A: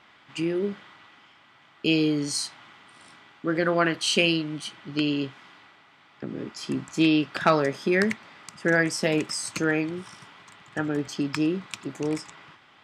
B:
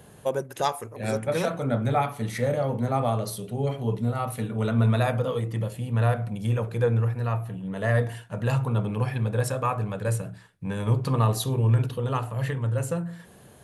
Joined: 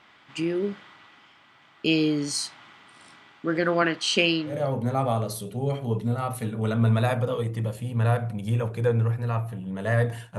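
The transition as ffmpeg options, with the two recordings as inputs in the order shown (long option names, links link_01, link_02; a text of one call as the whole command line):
ffmpeg -i cue0.wav -i cue1.wav -filter_complex "[0:a]asettb=1/sr,asplit=3[link_01][link_02][link_03];[link_01]atrim=end=3.824[link_04];[link_02]atrim=start=3.82:end=4.63,asetpts=PTS-STARTPTS,afade=type=in:duration=0.004:curve=qsin,afade=type=out:start_time=0.806:duration=0.004:curve=qsin,highpass=140,lowpass=7600[link_05];[link_03]atrim=start=4.626[link_06];[link_04][link_05]acrossfade=duration=0.004:curve1=hsin:curve2=qsin[link_07];[link_07][link_06]acrossfade=duration=0.004:curve1=qsin:curve2=hsin,apad=whole_dur=10.38,atrim=end=10.38,atrim=end=4.63,asetpts=PTS-STARTPTS[link_08];[1:a]atrim=start=2.42:end=8.35,asetpts=PTS-STARTPTS[link_09];[link_08][link_09]acrossfade=duration=0.18:curve1=tri:curve2=tri" out.wav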